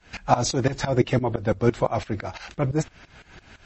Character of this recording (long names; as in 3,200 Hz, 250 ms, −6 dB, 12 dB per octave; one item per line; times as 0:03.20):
tremolo saw up 5.9 Hz, depth 95%
a quantiser's noise floor 12 bits, dither none
MP3